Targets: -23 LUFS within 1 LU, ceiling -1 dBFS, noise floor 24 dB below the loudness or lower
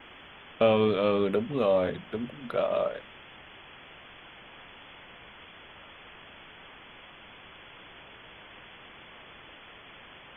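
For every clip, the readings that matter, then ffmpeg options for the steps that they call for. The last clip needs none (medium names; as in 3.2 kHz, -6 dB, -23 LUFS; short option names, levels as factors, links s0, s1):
noise floor -50 dBFS; noise floor target -52 dBFS; loudness -27.5 LUFS; peak level -10.5 dBFS; loudness target -23.0 LUFS
-> -af "afftdn=nr=6:nf=-50"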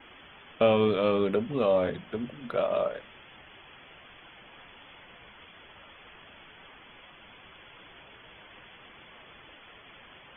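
noise floor -53 dBFS; loudness -27.0 LUFS; peak level -10.5 dBFS; loudness target -23.0 LUFS
-> -af "volume=1.58"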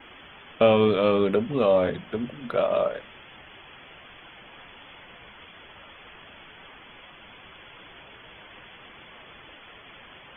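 loudness -23.0 LUFS; peak level -6.5 dBFS; noise floor -49 dBFS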